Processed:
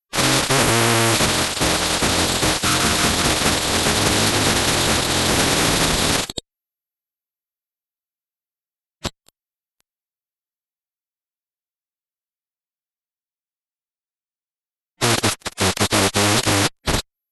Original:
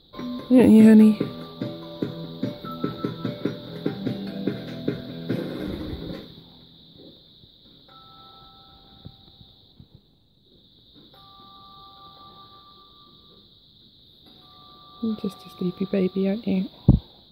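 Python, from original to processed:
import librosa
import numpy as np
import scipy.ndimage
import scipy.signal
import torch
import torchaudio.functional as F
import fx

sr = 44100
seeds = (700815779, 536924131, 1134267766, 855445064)

y = fx.fuzz(x, sr, gain_db=40.0, gate_db=-35.0)
y = fx.pitch_keep_formants(y, sr, semitones=-11.0)
y = fx.spectral_comp(y, sr, ratio=2.0)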